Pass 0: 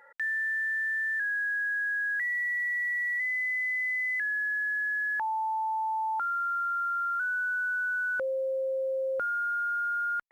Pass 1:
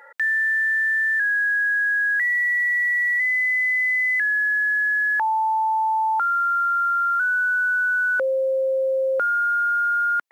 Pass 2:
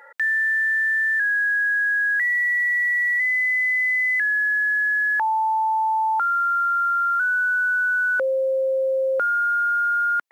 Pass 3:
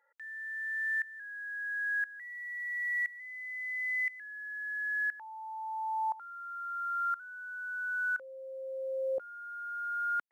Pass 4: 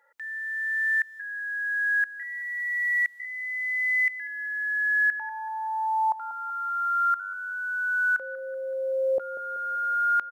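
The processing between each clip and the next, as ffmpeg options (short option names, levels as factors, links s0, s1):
-af "highpass=290,volume=2.82"
-af anull
-af "aeval=exprs='val(0)*pow(10,-19*if(lt(mod(-0.98*n/s,1),2*abs(-0.98)/1000),1-mod(-0.98*n/s,1)/(2*abs(-0.98)/1000),(mod(-0.98*n/s,1)-2*abs(-0.98)/1000)/(1-2*abs(-0.98)/1000))/20)':c=same,volume=0.355"
-filter_complex "[0:a]asplit=2[s0][s1];[s1]adelay=190,lowpass=f=1700:p=1,volume=0.224,asplit=2[s2][s3];[s3]adelay=190,lowpass=f=1700:p=1,volume=0.54,asplit=2[s4][s5];[s5]adelay=190,lowpass=f=1700:p=1,volume=0.54,asplit=2[s6][s7];[s7]adelay=190,lowpass=f=1700:p=1,volume=0.54,asplit=2[s8][s9];[s9]adelay=190,lowpass=f=1700:p=1,volume=0.54,asplit=2[s10][s11];[s11]adelay=190,lowpass=f=1700:p=1,volume=0.54[s12];[s0][s2][s4][s6][s8][s10][s12]amix=inputs=7:normalize=0,volume=2.66"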